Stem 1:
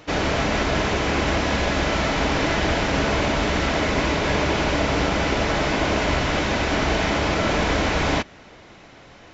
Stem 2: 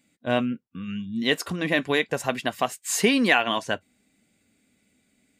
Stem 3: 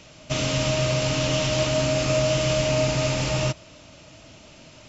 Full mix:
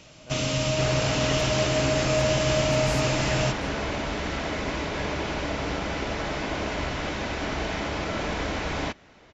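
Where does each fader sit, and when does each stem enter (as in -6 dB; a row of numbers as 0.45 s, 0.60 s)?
-8.0 dB, -18.5 dB, -2.0 dB; 0.70 s, 0.00 s, 0.00 s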